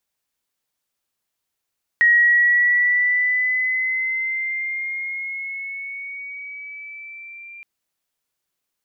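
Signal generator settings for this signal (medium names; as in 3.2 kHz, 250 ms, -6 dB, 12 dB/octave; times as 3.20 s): gliding synth tone sine, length 5.62 s, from 1.89 kHz, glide +4 st, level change -26 dB, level -10.5 dB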